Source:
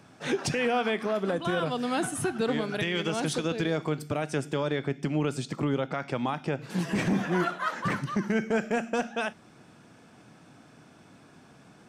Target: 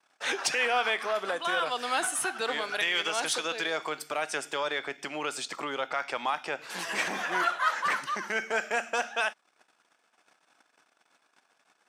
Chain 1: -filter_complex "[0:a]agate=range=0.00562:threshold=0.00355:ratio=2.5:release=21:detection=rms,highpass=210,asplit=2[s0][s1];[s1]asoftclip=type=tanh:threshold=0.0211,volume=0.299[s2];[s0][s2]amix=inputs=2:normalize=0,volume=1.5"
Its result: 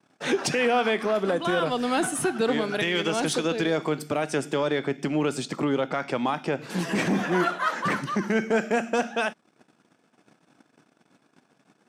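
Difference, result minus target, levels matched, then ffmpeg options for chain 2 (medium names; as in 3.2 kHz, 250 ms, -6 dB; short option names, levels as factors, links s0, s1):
250 Hz band +13.0 dB
-filter_complex "[0:a]agate=range=0.00562:threshold=0.00355:ratio=2.5:release=21:detection=rms,highpass=830,asplit=2[s0][s1];[s1]asoftclip=type=tanh:threshold=0.0211,volume=0.299[s2];[s0][s2]amix=inputs=2:normalize=0,volume=1.5"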